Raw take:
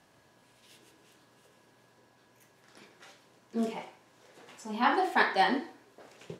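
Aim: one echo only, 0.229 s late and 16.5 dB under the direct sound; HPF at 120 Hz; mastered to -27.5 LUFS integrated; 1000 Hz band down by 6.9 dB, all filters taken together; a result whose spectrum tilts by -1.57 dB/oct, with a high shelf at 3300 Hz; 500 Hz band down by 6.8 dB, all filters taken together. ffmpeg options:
-af "highpass=120,equalizer=f=500:t=o:g=-8,equalizer=f=1k:t=o:g=-5.5,highshelf=f=3.3k:g=-4,aecho=1:1:229:0.15,volume=6.5dB"

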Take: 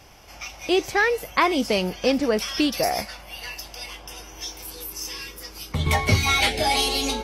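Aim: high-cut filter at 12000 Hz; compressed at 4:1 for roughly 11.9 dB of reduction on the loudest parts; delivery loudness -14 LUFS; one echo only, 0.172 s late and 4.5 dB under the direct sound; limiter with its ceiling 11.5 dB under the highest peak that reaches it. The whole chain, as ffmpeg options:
-af "lowpass=12k,acompressor=threshold=-29dB:ratio=4,alimiter=level_in=1.5dB:limit=-24dB:level=0:latency=1,volume=-1.5dB,aecho=1:1:172:0.596,volume=20dB"

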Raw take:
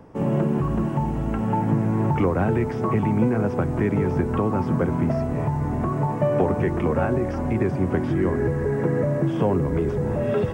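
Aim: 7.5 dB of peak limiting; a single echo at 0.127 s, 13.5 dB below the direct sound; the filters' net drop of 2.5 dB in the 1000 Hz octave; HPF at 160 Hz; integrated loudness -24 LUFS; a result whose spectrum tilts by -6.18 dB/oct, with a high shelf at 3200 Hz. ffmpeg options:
-af "highpass=160,equalizer=f=1k:t=o:g=-3.5,highshelf=f=3.2k:g=4,alimiter=limit=-17.5dB:level=0:latency=1,aecho=1:1:127:0.211,volume=2.5dB"

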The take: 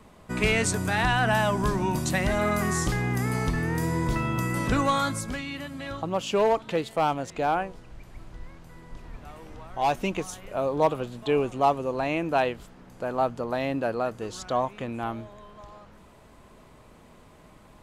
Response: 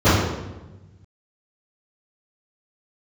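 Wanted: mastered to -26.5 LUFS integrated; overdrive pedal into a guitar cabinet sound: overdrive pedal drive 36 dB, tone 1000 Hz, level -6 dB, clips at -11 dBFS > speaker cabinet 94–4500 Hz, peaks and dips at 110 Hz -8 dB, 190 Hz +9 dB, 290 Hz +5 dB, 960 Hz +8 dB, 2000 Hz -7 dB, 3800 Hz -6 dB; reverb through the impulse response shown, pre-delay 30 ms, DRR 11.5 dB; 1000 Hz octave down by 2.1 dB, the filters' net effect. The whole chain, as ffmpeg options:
-filter_complex "[0:a]equalizer=f=1k:t=o:g=-7.5,asplit=2[a][b];[1:a]atrim=start_sample=2205,adelay=30[c];[b][c]afir=irnorm=-1:irlink=0,volume=-37dB[d];[a][d]amix=inputs=2:normalize=0,asplit=2[e][f];[f]highpass=f=720:p=1,volume=36dB,asoftclip=type=tanh:threshold=-11dB[g];[e][g]amix=inputs=2:normalize=0,lowpass=f=1k:p=1,volume=-6dB,highpass=94,equalizer=f=110:t=q:w=4:g=-8,equalizer=f=190:t=q:w=4:g=9,equalizer=f=290:t=q:w=4:g=5,equalizer=f=960:t=q:w=4:g=8,equalizer=f=2k:t=q:w=4:g=-7,equalizer=f=3.8k:t=q:w=4:g=-6,lowpass=f=4.5k:w=0.5412,lowpass=f=4.5k:w=1.3066,volume=-8dB"

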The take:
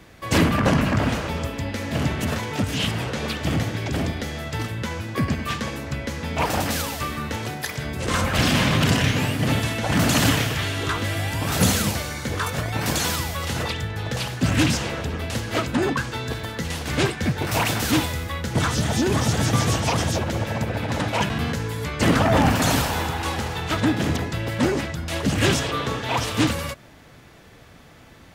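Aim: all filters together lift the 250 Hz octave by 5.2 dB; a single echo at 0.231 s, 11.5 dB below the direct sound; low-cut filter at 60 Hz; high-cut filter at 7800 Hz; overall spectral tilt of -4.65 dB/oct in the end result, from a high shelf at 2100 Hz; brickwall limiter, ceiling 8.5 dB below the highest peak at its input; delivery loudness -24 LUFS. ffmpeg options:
-af "highpass=60,lowpass=7.8k,equalizer=f=250:t=o:g=6.5,highshelf=f=2.1k:g=4,alimiter=limit=-10.5dB:level=0:latency=1,aecho=1:1:231:0.266,volume=-2dB"

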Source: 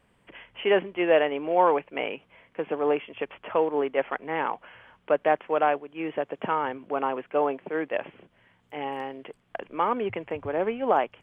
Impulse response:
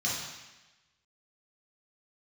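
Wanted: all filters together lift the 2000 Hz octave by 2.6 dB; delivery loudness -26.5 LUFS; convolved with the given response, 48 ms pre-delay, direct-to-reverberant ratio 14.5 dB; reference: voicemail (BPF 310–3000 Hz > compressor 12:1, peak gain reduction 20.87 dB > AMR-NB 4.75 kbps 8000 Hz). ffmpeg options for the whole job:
-filter_complex "[0:a]equalizer=f=2k:t=o:g=4,asplit=2[a][b];[1:a]atrim=start_sample=2205,adelay=48[c];[b][c]afir=irnorm=-1:irlink=0,volume=-22.5dB[d];[a][d]amix=inputs=2:normalize=0,highpass=310,lowpass=3k,acompressor=threshold=-36dB:ratio=12,volume=16.5dB" -ar 8000 -c:a libopencore_amrnb -b:a 4750

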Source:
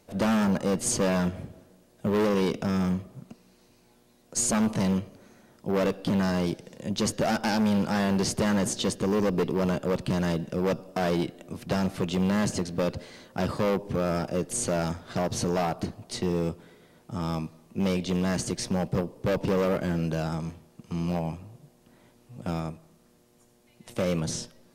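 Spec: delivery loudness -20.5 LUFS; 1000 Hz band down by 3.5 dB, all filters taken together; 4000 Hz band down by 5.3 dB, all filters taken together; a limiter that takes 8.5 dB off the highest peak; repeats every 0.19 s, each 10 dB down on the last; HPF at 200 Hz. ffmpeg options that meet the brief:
-af "highpass=200,equalizer=f=1k:t=o:g=-4.5,equalizer=f=4k:t=o:g=-7,alimiter=limit=-24dB:level=0:latency=1,aecho=1:1:190|380|570|760:0.316|0.101|0.0324|0.0104,volume=14dB"

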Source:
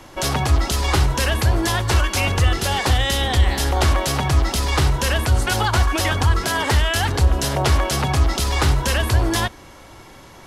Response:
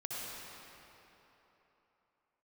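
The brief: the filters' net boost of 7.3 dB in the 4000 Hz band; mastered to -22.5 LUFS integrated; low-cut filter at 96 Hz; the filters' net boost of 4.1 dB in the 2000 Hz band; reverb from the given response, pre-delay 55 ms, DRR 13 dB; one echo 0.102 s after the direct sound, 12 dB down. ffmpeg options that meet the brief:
-filter_complex "[0:a]highpass=96,equalizer=f=2k:t=o:g=3,equalizer=f=4k:t=o:g=8.5,aecho=1:1:102:0.251,asplit=2[a][b];[1:a]atrim=start_sample=2205,adelay=55[c];[b][c]afir=irnorm=-1:irlink=0,volume=-15dB[d];[a][d]amix=inputs=2:normalize=0,volume=-5.5dB"

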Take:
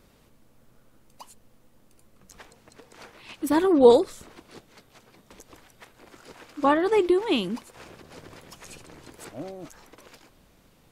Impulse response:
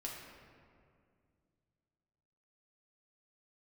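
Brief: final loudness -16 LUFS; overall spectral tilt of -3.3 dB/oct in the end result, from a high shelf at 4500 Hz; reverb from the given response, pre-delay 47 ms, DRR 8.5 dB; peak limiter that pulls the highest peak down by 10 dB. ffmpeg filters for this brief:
-filter_complex "[0:a]highshelf=f=4.5k:g=8,alimiter=limit=-14dB:level=0:latency=1,asplit=2[a][b];[1:a]atrim=start_sample=2205,adelay=47[c];[b][c]afir=irnorm=-1:irlink=0,volume=-7.5dB[d];[a][d]amix=inputs=2:normalize=0,volume=9dB"

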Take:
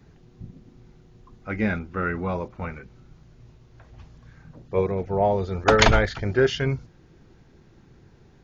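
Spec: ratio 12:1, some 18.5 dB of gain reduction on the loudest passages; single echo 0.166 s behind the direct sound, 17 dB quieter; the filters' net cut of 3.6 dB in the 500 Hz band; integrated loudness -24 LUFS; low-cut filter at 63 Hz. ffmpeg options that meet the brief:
-af "highpass=63,equalizer=f=500:t=o:g=-4.5,acompressor=threshold=-32dB:ratio=12,aecho=1:1:166:0.141,volume=15dB"

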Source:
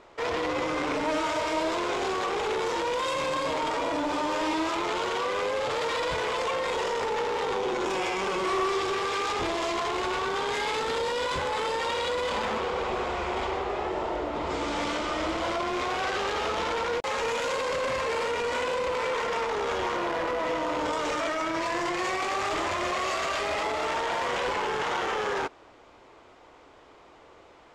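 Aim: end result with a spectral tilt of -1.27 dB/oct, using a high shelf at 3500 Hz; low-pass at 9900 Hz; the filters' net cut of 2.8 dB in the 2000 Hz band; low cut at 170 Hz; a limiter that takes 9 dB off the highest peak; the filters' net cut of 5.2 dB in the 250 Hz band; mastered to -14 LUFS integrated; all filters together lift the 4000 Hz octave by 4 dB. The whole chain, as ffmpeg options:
-af "highpass=170,lowpass=9.9k,equalizer=f=250:t=o:g=-7.5,equalizer=f=2k:t=o:g=-6,highshelf=f=3.5k:g=5,equalizer=f=4k:t=o:g=4,volume=19.5dB,alimiter=limit=-6dB:level=0:latency=1"

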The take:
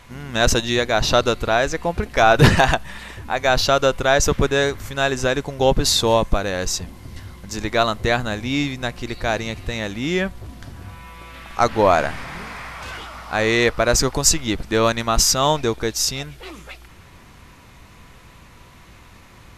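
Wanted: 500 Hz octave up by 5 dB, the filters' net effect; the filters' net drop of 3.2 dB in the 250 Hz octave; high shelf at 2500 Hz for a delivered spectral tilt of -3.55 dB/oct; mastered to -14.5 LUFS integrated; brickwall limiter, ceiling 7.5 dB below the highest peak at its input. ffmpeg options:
-af "equalizer=f=250:t=o:g=-8,equalizer=f=500:t=o:g=7.5,highshelf=f=2.5k:g=8.5,volume=2dB,alimiter=limit=-1dB:level=0:latency=1"

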